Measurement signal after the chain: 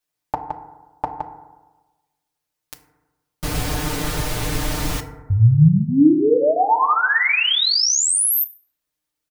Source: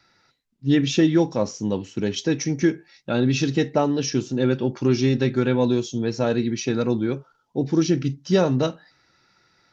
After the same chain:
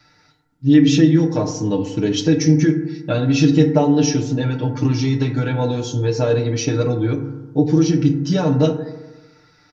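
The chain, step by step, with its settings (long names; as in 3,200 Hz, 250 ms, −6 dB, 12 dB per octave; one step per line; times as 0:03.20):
downward compressor 3 to 1, threshold −22 dBFS
parametric band 65 Hz +13 dB 1.3 octaves
comb filter 6.6 ms, depth 97%
feedback delay network reverb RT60 1.2 s, low-frequency decay 1×, high-frequency decay 0.3×, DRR 5.5 dB
level +2.5 dB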